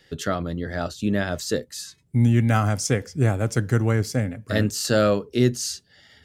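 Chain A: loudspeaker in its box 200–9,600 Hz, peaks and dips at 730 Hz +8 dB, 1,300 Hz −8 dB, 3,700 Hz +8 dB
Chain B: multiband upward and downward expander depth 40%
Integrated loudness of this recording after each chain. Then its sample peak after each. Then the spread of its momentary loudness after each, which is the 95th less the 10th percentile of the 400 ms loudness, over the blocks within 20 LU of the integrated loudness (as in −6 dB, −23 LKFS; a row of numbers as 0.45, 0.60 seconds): −25.0, −23.0 LKFS; −6.5, −6.5 dBFS; 8, 11 LU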